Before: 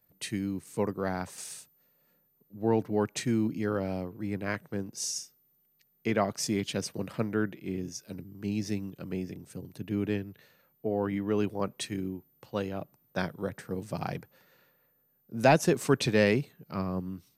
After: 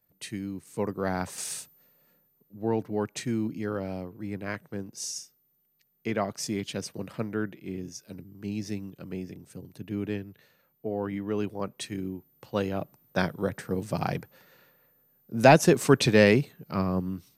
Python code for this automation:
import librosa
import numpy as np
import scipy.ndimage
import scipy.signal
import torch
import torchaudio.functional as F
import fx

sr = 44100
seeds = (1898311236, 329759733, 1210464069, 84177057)

y = fx.gain(x, sr, db=fx.line((0.63, -2.5), (1.57, 8.0), (2.72, -1.5), (11.74, -1.5), (12.74, 5.0)))